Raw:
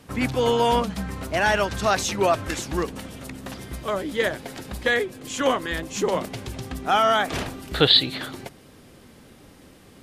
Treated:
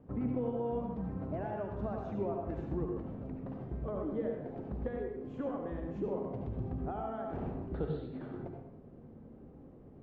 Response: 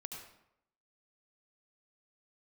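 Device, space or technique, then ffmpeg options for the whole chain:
television next door: -filter_complex "[0:a]acompressor=threshold=0.0447:ratio=5,lowpass=580[s0];[1:a]atrim=start_sample=2205[s1];[s0][s1]afir=irnorm=-1:irlink=0"

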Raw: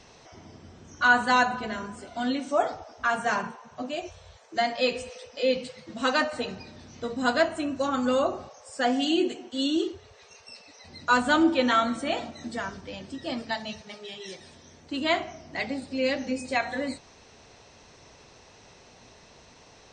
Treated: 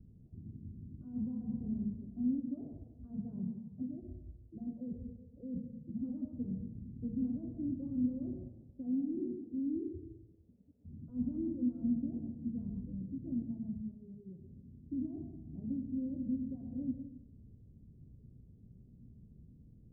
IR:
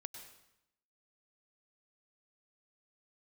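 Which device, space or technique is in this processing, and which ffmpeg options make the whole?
club heard from the street: -filter_complex "[0:a]alimiter=limit=0.0891:level=0:latency=1:release=11,lowpass=f=220:w=0.5412,lowpass=f=220:w=1.3066[s0];[1:a]atrim=start_sample=2205[s1];[s0][s1]afir=irnorm=-1:irlink=0,volume=2.66"

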